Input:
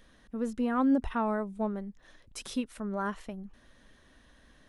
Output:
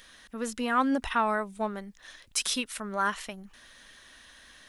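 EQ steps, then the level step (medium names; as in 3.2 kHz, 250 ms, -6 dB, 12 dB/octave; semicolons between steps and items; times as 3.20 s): tilt shelf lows -9.5 dB, about 890 Hz; +5.0 dB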